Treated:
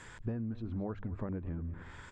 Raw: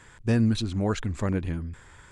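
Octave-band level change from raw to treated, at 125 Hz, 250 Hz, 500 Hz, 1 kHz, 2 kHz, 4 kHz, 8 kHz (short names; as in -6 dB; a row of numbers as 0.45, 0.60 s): -11.5 dB, -12.5 dB, -12.0 dB, -12.0 dB, -13.0 dB, under -20 dB, under -15 dB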